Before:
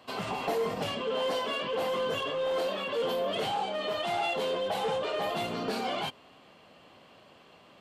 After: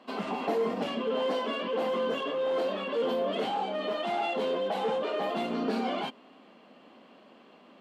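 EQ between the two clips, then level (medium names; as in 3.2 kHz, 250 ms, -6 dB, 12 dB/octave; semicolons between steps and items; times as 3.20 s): low-pass 2.8 kHz 6 dB/octave; resonant low shelf 160 Hz -12 dB, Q 3; 0.0 dB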